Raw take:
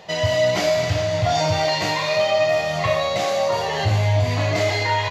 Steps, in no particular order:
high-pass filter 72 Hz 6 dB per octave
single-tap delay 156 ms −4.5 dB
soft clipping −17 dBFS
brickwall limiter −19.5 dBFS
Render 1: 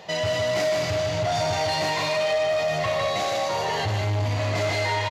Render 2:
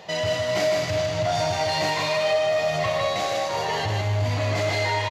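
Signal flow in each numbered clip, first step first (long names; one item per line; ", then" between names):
single-tap delay, then soft clipping, then brickwall limiter, then high-pass filter
soft clipping, then high-pass filter, then brickwall limiter, then single-tap delay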